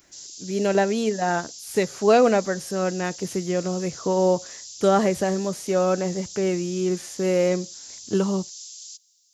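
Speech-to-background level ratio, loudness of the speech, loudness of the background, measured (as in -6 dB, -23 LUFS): 14.0 dB, -23.5 LUFS, -37.5 LUFS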